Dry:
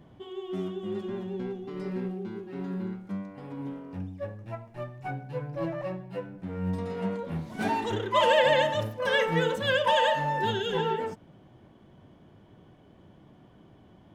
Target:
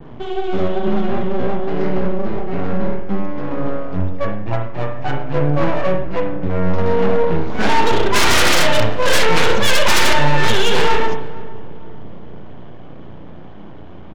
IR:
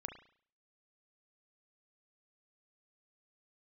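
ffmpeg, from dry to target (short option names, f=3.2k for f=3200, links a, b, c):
-filter_complex "[0:a]adynamicequalizer=threshold=0.00501:dfrequency=5000:dqfactor=0.72:tfrequency=5000:tqfactor=0.72:attack=5:release=100:ratio=0.375:range=4:mode=boostabove:tftype=bell,aresample=16000,aeval=exprs='max(val(0),0)':c=same,aresample=44100,adynamicsmooth=sensitivity=6.5:basefreq=4.4k,aeval=exprs='0.282*sin(PI/2*4.47*val(0)/0.282)':c=same,asplit=2[a][b];[b]adelay=461,lowpass=f=890:p=1,volume=-16dB,asplit=2[c][d];[d]adelay=461,lowpass=f=890:p=1,volume=0.51,asplit=2[e][f];[f]adelay=461,lowpass=f=890:p=1,volume=0.51,asplit=2[g][h];[h]adelay=461,lowpass=f=890:p=1,volume=0.51,asplit=2[i][j];[j]adelay=461,lowpass=f=890:p=1,volume=0.51[k];[a][c][e][g][i][k]amix=inputs=6:normalize=0[l];[1:a]atrim=start_sample=2205[m];[l][m]afir=irnorm=-1:irlink=0,volume=6.5dB"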